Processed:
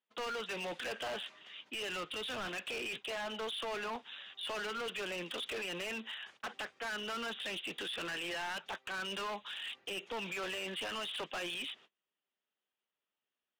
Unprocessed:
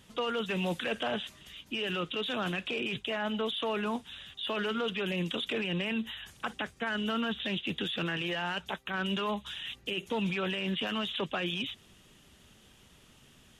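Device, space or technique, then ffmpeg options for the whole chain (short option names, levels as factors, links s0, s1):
walkie-talkie: -filter_complex "[0:a]highpass=500,lowpass=3000,asoftclip=type=hard:threshold=0.0133,agate=range=0.0316:threshold=0.00126:ratio=16:detection=peak,asettb=1/sr,asplit=3[s0][s1][s2];[s0]atrim=end=1.764[s3];[s1]atrim=start=1.76:end=2.48,asetpts=PTS-STARTPTS,afade=t=in:d=0.004:c=qsin,afade=t=out:st=0.716:d=0.004:c=qsin,asubboost=boost=8.5:cutoff=240[s4];[s2]atrim=start=2.476[s5];[s3][s4]acrossfade=d=0.004:c1=hsin:c2=qsin[s6];[s6][s5]acrossfade=d=0.004:c1=qsin:c2=hsin,volume=1.12"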